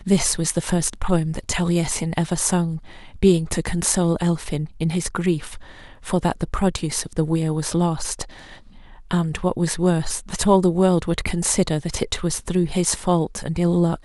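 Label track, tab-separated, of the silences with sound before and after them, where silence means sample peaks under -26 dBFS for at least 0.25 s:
2.770000	3.230000	silence
5.570000	6.070000	silence
8.230000	9.110000	silence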